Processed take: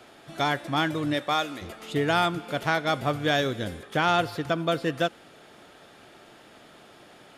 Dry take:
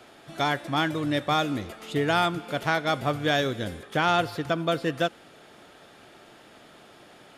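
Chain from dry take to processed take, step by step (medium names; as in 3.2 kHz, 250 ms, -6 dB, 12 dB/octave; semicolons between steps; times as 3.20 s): 1.13–1.61 s: high-pass 240 Hz -> 980 Hz 6 dB/octave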